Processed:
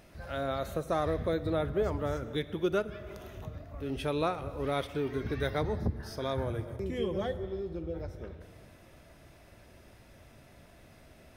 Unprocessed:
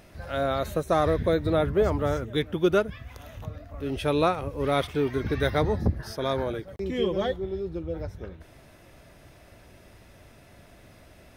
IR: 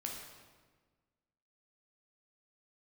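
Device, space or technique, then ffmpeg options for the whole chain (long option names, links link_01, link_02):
ducked reverb: -filter_complex "[0:a]asplit=3[link_01][link_02][link_03];[1:a]atrim=start_sample=2205[link_04];[link_02][link_04]afir=irnorm=-1:irlink=0[link_05];[link_03]apad=whole_len=501289[link_06];[link_05][link_06]sidechaincompress=threshold=-29dB:ratio=8:attack=9.1:release=416,volume=-1dB[link_07];[link_01][link_07]amix=inputs=2:normalize=0,asettb=1/sr,asplit=3[link_08][link_09][link_10];[link_08]atrim=end=6.354[link_11];[link_09]atrim=start=6.35:end=7.44,asetpts=PTS-STARTPTS,afade=type=in:duration=0.004:curve=qsin,afade=type=out:start_time=1.086:duration=0.004:curve=qsin,equalizer=frequency=100:width_type=o:width=0.67:gain=12,equalizer=frequency=4000:width_type=o:width=0.67:gain=-5,equalizer=frequency=10000:width_type=o:width=0.67:gain=7[link_12];[link_10]atrim=start=7.436[link_13];[link_11][link_12]acrossfade=duration=0.004:curve1=hsin:curve2=qsin[link_14];[link_14][link_13]acrossfade=duration=0.004:curve1=qsin:curve2=hsin,volume=-8.5dB"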